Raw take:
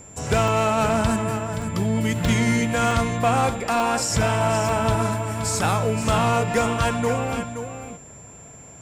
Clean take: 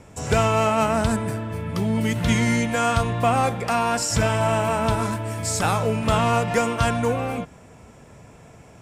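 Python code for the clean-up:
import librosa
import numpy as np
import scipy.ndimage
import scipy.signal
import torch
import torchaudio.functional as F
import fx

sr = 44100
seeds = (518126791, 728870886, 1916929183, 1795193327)

y = fx.fix_declip(x, sr, threshold_db=-12.5)
y = fx.notch(y, sr, hz=7300.0, q=30.0)
y = fx.fix_interpolate(y, sr, at_s=(0.48, 1.62, 2.25, 2.91, 3.8, 4.69, 6.03, 7.06), length_ms=1.0)
y = fx.fix_echo_inverse(y, sr, delay_ms=524, level_db=-9.5)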